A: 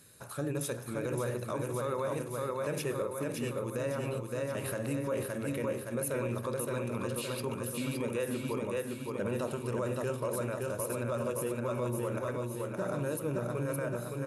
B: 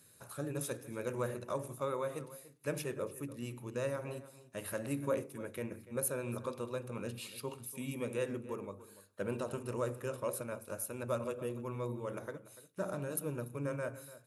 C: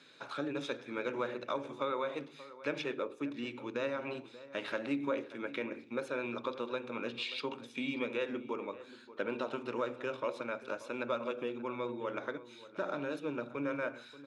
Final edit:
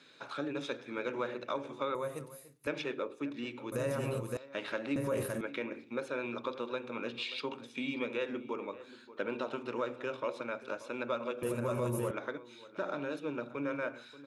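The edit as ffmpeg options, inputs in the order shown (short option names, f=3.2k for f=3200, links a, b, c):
-filter_complex "[0:a]asplit=3[a][b][c];[2:a]asplit=5[d][e][f][g][h];[d]atrim=end=1.952[i];[1:a]atrim=start=1.948:end=2.672[j];[e]atrim=start=2.668:end=3.722[k];[a]atrim=start=3.718:end=4.372[l];[f]atrim=start=4.368:end=4.962[m];[b]atrim=start=4.958:end=5.412[n];[g]atrim=start=5.408:end=11.432[o];[c]atrim=start=11.428:end=12.112[p];[h]atrim=start=12.108[q];[i][j]acrossfade=d=0.004:c1=hsin:c2=hsin[r];[r][k]acrossfade=d=0.004:c1=hsin:c2=hsin[s];[s][l]acrossfade=d=0.004:c1=hsin:c2=hsin[t];[t][m]acrossfade=d=0.004:c1=hsin:c2=hsin[u];[u][n]acrossfade=d=0.004:c1=hsin:c2=hsin[v];[v][o]acrossfade=d=0.004:c1=hsin:c2=hsin[w];[w][p]acrossfade=d=0.004:c1=hsin:c2=hsin[x];[x][q]acrossfade=d=0.004:c1=hsin:c2=hsin"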